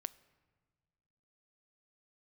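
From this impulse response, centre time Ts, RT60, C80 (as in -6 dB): 2 ms, 1.6 s, 21.5 dB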